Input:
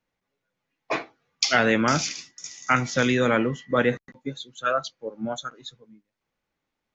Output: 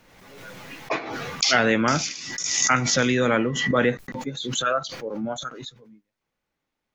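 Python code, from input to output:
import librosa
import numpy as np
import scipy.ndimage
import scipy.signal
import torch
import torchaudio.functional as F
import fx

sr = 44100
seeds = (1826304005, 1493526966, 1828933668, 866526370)

y = fx.pre_swell(x, sr, db_per_s=38.0)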